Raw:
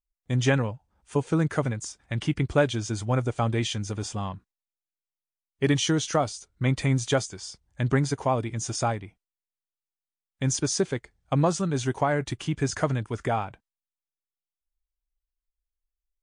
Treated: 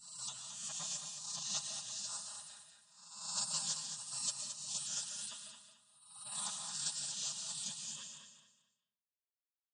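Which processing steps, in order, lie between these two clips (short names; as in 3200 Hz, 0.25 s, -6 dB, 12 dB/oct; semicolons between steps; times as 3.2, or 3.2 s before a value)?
spectral swells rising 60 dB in 1.62 s; Chebyshev band-pass 300–7800 Hz, order 4; expander -49 dBFS; spectral gate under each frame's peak -30 dB weak; high shelf 2800 Hz +5 dB; comb 4.9 ms, depth 56%; dynamic EQ 1500 Hz, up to -3 dB, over -52 dBFS, Q 0.92; fixed phaser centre 890 Hz, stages 4; time stretch by phase-locked vocoder 0.6×; feedback echo 0.22 s, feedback 27%, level -8 dB; on a send at -5 dB: reverb RT60 0.70 s, pre-delay 95 ms; on the sum: gain +2.5 dB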